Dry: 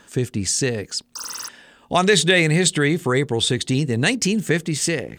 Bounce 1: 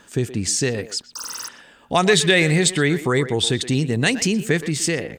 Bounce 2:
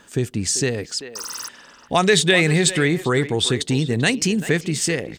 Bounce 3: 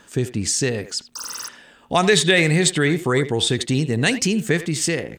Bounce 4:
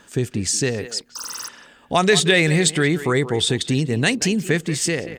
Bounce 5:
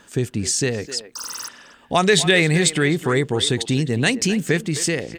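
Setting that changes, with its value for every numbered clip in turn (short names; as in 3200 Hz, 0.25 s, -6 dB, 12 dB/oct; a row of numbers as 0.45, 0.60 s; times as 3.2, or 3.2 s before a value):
speakerphone echo, time: 120, 390, 80, 180, 260 ms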